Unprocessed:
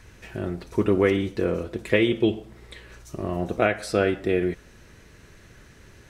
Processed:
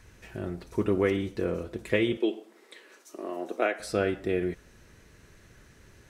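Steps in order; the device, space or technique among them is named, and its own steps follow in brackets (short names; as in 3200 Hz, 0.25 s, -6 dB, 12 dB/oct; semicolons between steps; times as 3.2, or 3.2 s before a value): 2.17–3.8 steep high-pass 260 Hz 36 dB/oct; exciter from parts (in parallel at -10 dB: HPF 2800 Hz + soft clip -26 dBFS, distortion -15 dB + HPF 4600 Hz 6 dB/oct); on the sum: gain -5 dB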